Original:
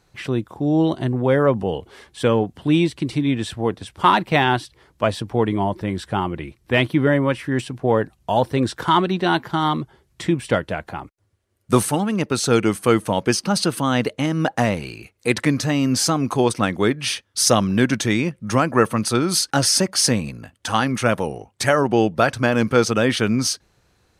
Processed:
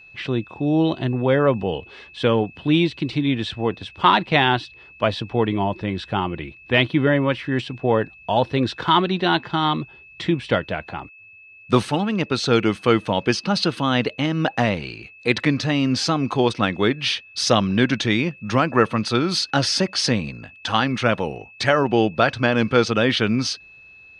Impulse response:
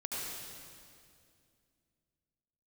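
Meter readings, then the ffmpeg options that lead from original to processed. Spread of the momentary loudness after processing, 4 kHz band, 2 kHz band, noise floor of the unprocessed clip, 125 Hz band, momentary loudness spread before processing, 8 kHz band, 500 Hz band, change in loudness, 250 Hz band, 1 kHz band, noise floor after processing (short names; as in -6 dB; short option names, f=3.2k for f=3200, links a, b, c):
8 LU, +1.5 dB, +1.0 dB, -63 dBFS, -1.0 dB, 8 LU, -9.5 dB, -1.0 dB, -0.5 dB, -1.0 dB, -0.5 dB, -47 dBFS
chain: -af "lowpass=f=3.8k:t=q:w=1.7,aeval=exprs='val(0)+0.00708*sin(2*PI*2600*n/s)':c=same,volume=-1dB"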